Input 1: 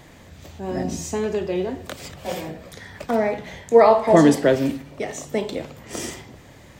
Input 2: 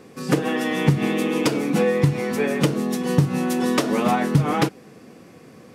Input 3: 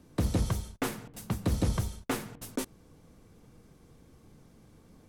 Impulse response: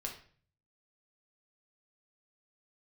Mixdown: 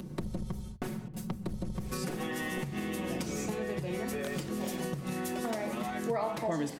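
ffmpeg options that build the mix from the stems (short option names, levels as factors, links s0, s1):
-filter_complex "[0:a]equalizer=f=390:w=1.5:g=-5,adelay=2350,volume=0.531[s0];[1:a]highshelf=f=6300:g=9,acompressor=threshold=0.0398:ratio=6,adelay=1750,volume=0.891,asplit=2[s1][s2];[s2]volume=0.355[s3];[2:a]equalizer=f=140:w=0.36:g=12.5,acompressor=mode=upward:threshold=0.0355:ratio=2.5,aeval=exprs='(tanh(5.62*val(0)+0.4)-tanh(0.4))/5.62':c=same,volume=0.501,asplit=2[s4][s5];[s5]volume=0.15[s6];[s1][s4]amix=inputs=2:normalize=0,aecho=1:1:5.4:0.94,acompressor=threshold=0.0355:ratio=6,volume=1[s7];[3:a]atrim=start_sample=2205[s8];[s3][s6]amix=inputs=2:normalize=0[s9];[s9][s8]afir=irnorm=-1:irlink=0[s10];[s0][s7][s10]amix=inputs=3:normalize=0,acompressor=threshold=0.0224:ratio=3"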